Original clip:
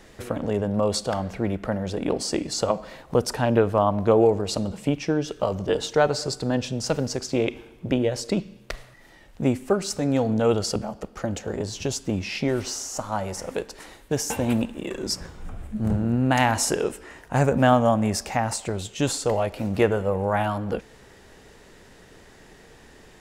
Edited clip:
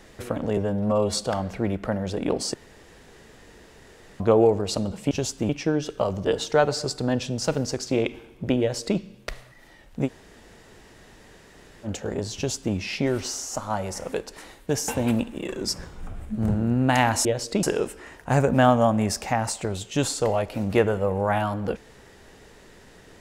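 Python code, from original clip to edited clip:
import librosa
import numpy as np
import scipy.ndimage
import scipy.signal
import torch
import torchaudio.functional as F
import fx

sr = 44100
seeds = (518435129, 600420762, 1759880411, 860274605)

y = fx.edit(x, sr, fx.stretch_span(start_s=0.57, length_s=0.4, factor=1.5),
    fx.room_tone_fill(start_s=2.34, length_s=1.66),
    fx.duplicate(start_s=8.02, length_s=0.38, to_s=16.67),
    fx.room_tone_fill(start_s=9.48, length_s=1.8, crossfade_s=0.06),
    fx.duplicate(start_s=11.78, length_s=0.38, to_s=4.91), tone=tone)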